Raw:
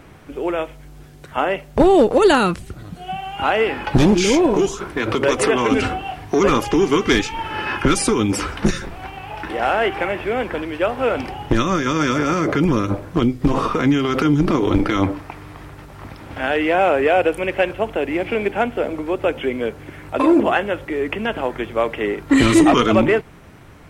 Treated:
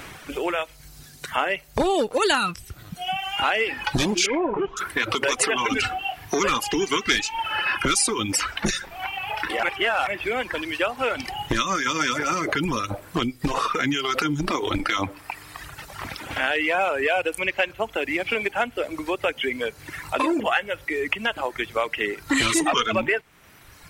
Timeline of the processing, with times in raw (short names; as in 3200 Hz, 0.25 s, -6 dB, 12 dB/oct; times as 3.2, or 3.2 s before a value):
4.26–4.77 LPF 2300 Hz 24 dB/oct
9.63–10.07 reverse
whole clip: tilt shelf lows -7.5 dB; reverb removal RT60 1.7 s; compressor 2:1, threshold -34 dBFS; gain +6.5 dB